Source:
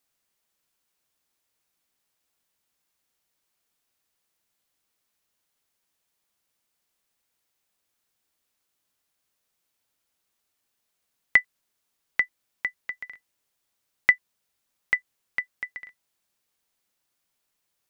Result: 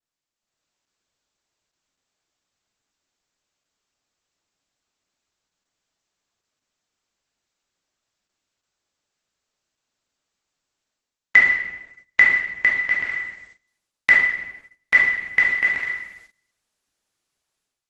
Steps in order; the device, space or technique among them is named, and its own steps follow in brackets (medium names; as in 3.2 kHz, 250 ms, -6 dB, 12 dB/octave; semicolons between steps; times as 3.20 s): speakerphone in a meeting room (reverberation RT60 1.0 s, pre-delay 11 ms, DRR -4.5 dB; level rider gain up to 15.5 dB; gate -46 dBFS, range -18 dB; trim -1 dB; Opus 12 kbps 48 kHz)